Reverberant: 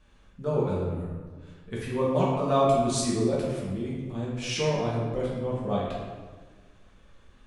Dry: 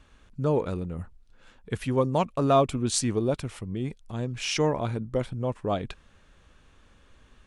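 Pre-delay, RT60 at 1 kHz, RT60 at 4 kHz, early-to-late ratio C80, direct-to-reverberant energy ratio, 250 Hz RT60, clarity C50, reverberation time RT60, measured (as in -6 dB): 4 ms, 1.4 s, 0.95 s, 2.5 dB, -6.5 dB, 1.8 s, 0.0 dB, 1.5 s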